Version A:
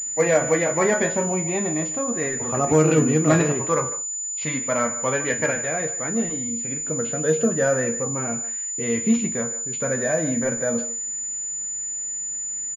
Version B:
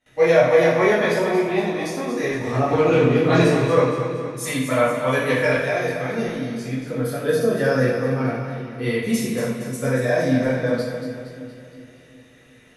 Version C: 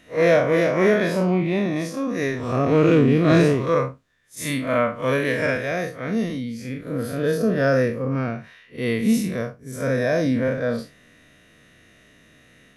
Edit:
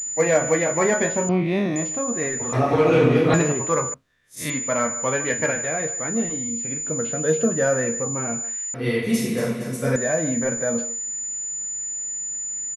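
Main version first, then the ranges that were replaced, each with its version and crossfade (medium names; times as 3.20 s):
A
1.29–1.76 s: from C
2.53–3.34 s: from B
3.94–4.50 s: from C
8.74–9.96 s: from B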